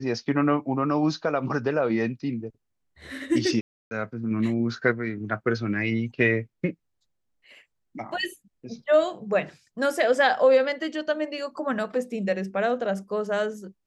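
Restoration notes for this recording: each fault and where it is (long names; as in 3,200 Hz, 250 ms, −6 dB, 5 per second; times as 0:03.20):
0:03.61–0:03.91: drop-out 300 ms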